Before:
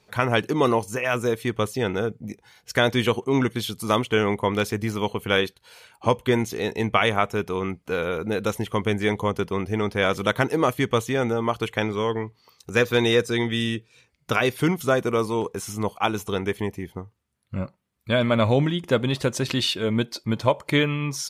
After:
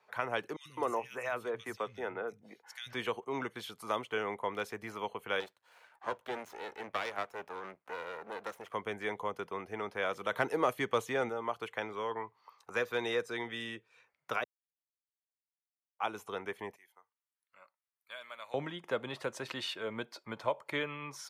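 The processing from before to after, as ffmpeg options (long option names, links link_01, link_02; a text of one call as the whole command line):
ffmpeg -i in.wav -filter_complex "[0:a]asettb=1/sr,asplit=3[link_01][link_02][link_03];[link_01]atrim=end=0.564[link_04];[link_02]atrim=start=0.56:end=2.93,asetpts=PTS-STARTPTS,afade=type=in:duration=0.004:curve=qsin,afade=type=out:start_time=2.366:duration=0.004:curve=qsin,acrossover=split=160|2900[link_05][link_06][link_07];[link_05]adelay=90[link_08];[link_06]adelay=210[link_09];[link_08][link_09][link_07]amix=inputs=3:normalize=0,atrim=end_sample=104517[link_10];[link_03]atrim=start=2.926[link_11];[link_04][link_10]acrossfade=duration=0.004:curve1=hsin:curve2=qsin[link_12];[link_12][link_11]acrossfade=duration=0.004:curve1=qsin:curve2=hsin,asettb=1/sr,asplit=3[link_13][link_14][link_15];[link_13]atrim=end=5.404[link_16];[link_14]atrim=start=5.4:end=8.74,asetpts=PTS-STARTPTS,afade=type=in:duration=0.004:curve=qsin,afade=type=out:start_time=3.336:duration=0.004:curve=qsin,aeval=exprs='max(val(0),0)':channel_layout=same[link_17];[link_15]atrim=start=8.736[link_18];[link_16][link_17]acrossfade=duration=0.004:curve1=hsin:curve2=qsin[link_19];[link_19][link_18]acrossfade=duration=0.004:curve1=qsin:curve2=hsin,asettb=1/sr,asplit=3[link_20][link_21][link_22];[link_20]atrim=end=10.314[link_23];[link_21]atrim=start=10.31:end=11.29,asetpts=PTS-STARTPTS,afade=type=in:duration=0.004:curve=qsin,afade=type=out:start_time=0.976:duration=0.004:curve=qsin,acontrast=36[link_24];[link_22]atrim=start=11.286[link_25];[link_23][link_24]acrossfade=duration=0.004:curve1=hsin:curve2=qsin[link_26];[link_26][link_25]acrossfade=duration=0.004:curve1=qsin:curve2=hsin,asettb=1/sr,asplit=3[link_27][link_28][link_29];[link_27]atrim=end=12.114[link_30];[link_28]atrim=start=12.11:end=12.76,asetpts=PTS-STARTPTS,afade=type=in:duration=0.004:curve=qsin,afade=type=out:start_time=0.646:duration=0.004:curve=qsin,equalizer=frequency=1000:width_type=o:width=0.77:gain=8[link_31];[link_29]atrim=start=12.756[link_32];[link_30][link_31]acrossfade=duration=0.004:curve1=hsin:curve2=qsin[link_33];[link_33][link_32]acrossfade=duration=0.004:curve1=qsin:curve2=hsin,asettb=1/sr,asplit=3[link_34][link_35][link_36];[link_34]atrim=end=16.764[link_37];[link_35]atrim=start=16.76:end=18.54,asetpts=PTS-STARTPTS,afade=type=in:duration=0.004:curve=qsin,afade=type=out:start_time=1.776:duration=0.004:curve=qsin,aderivative[link_38];[link_36]atrim=start=18.536[link_39];[link_37][link_38]acrossfade=duration=0.004:curve1=hsin:curve2=qsin[link_40];[link_40][link_39]acrossfade=duration=0.004:curve1=qsin:curve2=hsin,asplit=3[link_41][link_42][link_43];[link_41]atrim=end=14.44,asetpts=PTS-STARTPTS,afade=type=out:start_time=14.436:duration=0.004:curve=hsin[link_44];[link_42]atrim=start=14.44:end=15.99,asetpts=PTS-STARTPTS,volume=0[link_45];[link_43]atrim=start=15.99,asetpts=PTS-STARTPTS,afade=type=in:duration=0.004:curve=hsin[link_46];[link_44][link_45][link_46]concat=n=3:v=0:a=1,highpass=110,acrossover=split=590 2000:gain=0.0794 1 0.141[link_47][link_48][link_49];[link_47][link_48][link_49]amix=inputs=3:normalize=0,acrossover=split=450|3000[link_50][link_51][link_52];[link_51]acompressor=threshold=-52dB:ratio=1.5[link_53];[link_50][link_53][link_52]amix=inputs=3:normalize=0" out.wav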